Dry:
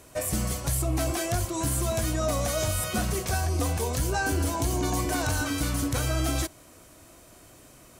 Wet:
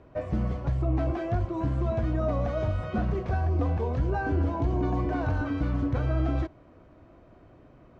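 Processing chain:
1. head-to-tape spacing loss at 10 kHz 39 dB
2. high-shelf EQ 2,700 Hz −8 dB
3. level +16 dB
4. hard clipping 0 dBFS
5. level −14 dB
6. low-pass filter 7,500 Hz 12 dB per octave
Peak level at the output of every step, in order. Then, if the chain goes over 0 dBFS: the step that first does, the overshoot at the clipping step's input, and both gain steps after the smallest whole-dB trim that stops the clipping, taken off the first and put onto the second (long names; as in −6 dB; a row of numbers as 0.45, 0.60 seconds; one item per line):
−18.5, −18.5, −2.5, −2.5, −16.5, −16.5 dBFS
no step passes full scale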